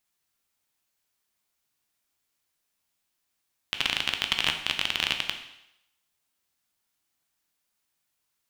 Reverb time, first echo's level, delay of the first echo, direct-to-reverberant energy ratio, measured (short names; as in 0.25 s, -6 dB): 0.80 s, none, none, 5.0 dB